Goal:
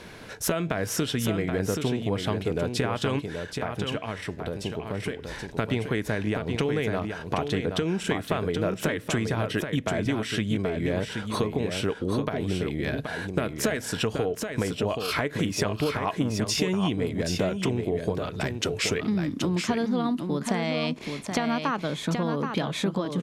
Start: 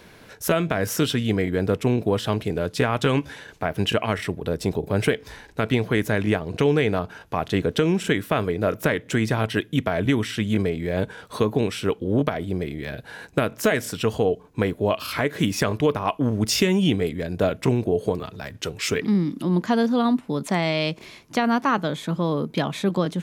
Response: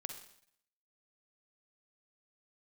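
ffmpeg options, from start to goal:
-filter_complex "[0:a]lowpass=11000,acompressor=threshold=0.0398:ratio=6,asettb=1/sr,asplit=3[s0][s1][s2];[s0]atrim=end=3.194[s3];[s1]atrim=start=3.19:end=5.28,asetpts=PTS-STARTPTS,afade=t=in:d=0.004:c=qsin,afade=t=out:st=2.086:d=0.004:c=qsin,flanger=delay=10:depth=3.8:regen=88:speed=1.1:shape=triangular[s4];[s2]atrim=start=5.276[s5];[s3][s4]acrossfade=d=0.004:c1=hsin:c2=qsin[s6];[s6][s5]acrossfade=d=0.004:c1=qsin:c2=hsin,aecho=1:1:777:0.501,volume=1.58"

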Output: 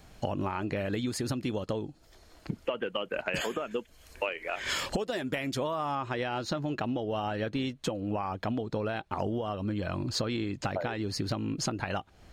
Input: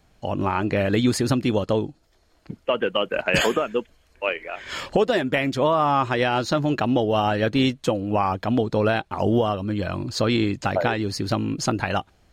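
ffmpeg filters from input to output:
-af "asetnsamples=n=441:p=0,asendcmd='3.71 highshelf g 10.5;5.95 highshelf g -3',highshelf=f=5800:g=3,acompressor=threshold=0.02:ratio=16,volume=1.88"

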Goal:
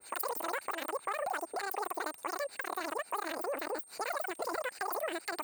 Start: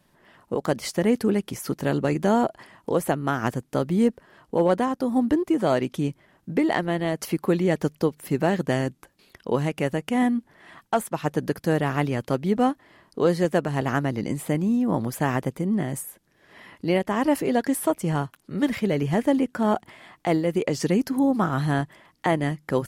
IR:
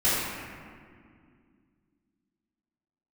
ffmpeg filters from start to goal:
-af "bass=f=250:g=-6,treble=f=4000:g=15,bandreject=f=1400:w=8.3,acompressor=threshold=0.0141:ratio=3,atempo=1.8,crystalizer=i=1:c=0,aeval=exprs='val(0)+0.00282*sin(2*PI*3700*n/s)':c=same,asetrate=103194,aresample=44100,adynamicequalizer=threshold=0.00224:dfrequency=2500:dqfactor=0.7:tfrequency=2500:tqfactor=0.7:attack=5:release=100:ratio=0.375:range=2.5:mode=cutabove:tftype=highshelf,volume=1.12"

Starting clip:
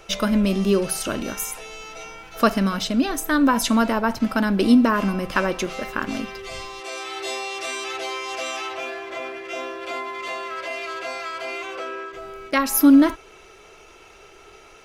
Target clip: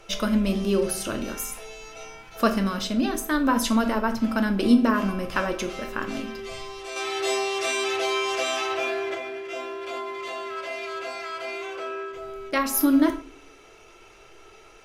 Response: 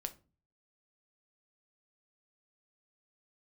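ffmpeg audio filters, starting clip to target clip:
-filter_complex "[0:a]asettb=1/sr,asplit=3[s0][s1][s2];[s0]atrim=end=6.964[s3];[s1]atrim=start=6.96:end=9.15,asetpts=PTS-STARTPTS,afade=t=in:d=0.004:c=qsin,afade=t=out:st=2.186:d=0.004:c=qsin,acontrast=50[s4];[s2]atrim=start=9.146[s5];[s3][s4]acrossfade=d=0.004:c1=hsin:c2=qsin[s6];[s6][s5]acrossfade=d=0.004:c1=qsin:c2=hsin[s7];[1:a]atrim=start_sample=2205,asetrate=30429,aresample=44100[s8];[s7][s8]afir=irnorm=-1:irlink=0,volume=0.668"

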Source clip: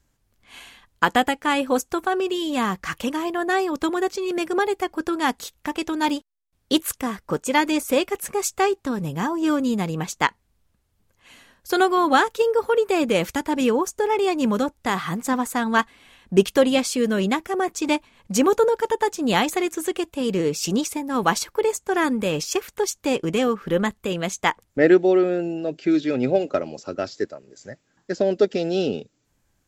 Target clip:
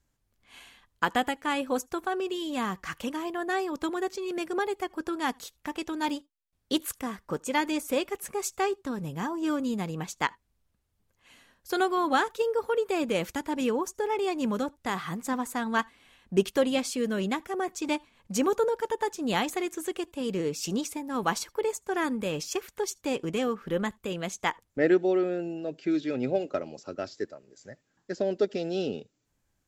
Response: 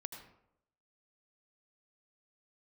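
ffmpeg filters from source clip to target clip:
-filter_complex "[0:a]asplit=2[s0][s1];[1:a]atrim=start_sample=2205,afade=t=out:st=0.13:d=0.01,atrim=end_sample=6174[s2];[s1][s2]afir=irnorm=-1:irlink=0,volume=0.2[s3];[s0][s3]amix=inputs=2:normalize=0,volume=0.376"

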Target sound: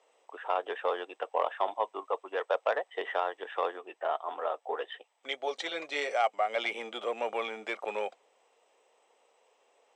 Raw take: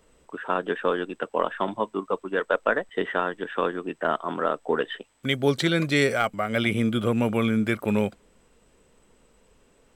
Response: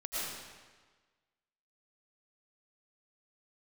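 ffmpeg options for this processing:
-filter_complex "[0:a]asplit=3[s0][s1][s2];[s0]afade=t=out:st=3.77:d=0.02[s3];[s1]flanger=delay=3.5:depth=4.2:regen=-31:speed=1.6:shape=triangular,afade=t=in:st=3.77:d=0.02,afade=t=out:st=6.13:d=0.02[s4];[s2]afade=t=in:st=6.13:d=0.02[s5];[s3][s4][s5]amix=inputs=3:normalize=0,asoftclip=type=tanh:threshold=0.224,highpass=f=480:w=0.5412,highpass=f=480:w=1.3066,equalizer=f=770:t=q:w=4:g=8,equalizer=f=1500:t=q:w=4:g=-8,equalizer=f=4500:t=q:w=4:g=-6,lowpass=f=6800:w=0.5412,lowpass=f=6800:w=1.3066,volume=0.708"

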